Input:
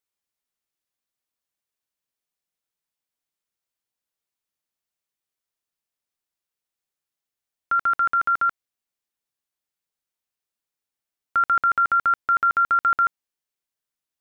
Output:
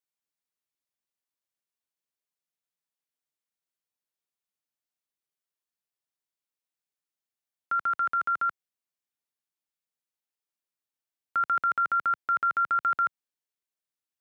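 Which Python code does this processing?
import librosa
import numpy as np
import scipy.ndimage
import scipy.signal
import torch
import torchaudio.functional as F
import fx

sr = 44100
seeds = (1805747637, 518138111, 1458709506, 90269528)

y = scipy.signal.sosfilt(scipy.signal.butter(2, 99.0, 'highpass', fs=sr, output='sos'), x)
y = y * 10.0 ** (-6.0 / 20.0)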